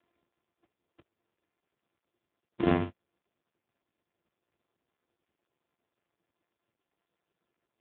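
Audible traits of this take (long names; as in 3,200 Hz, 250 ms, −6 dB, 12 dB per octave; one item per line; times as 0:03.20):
a buzz of ramps at a fixed pitch in blocks of 128 samples
AMR narrowband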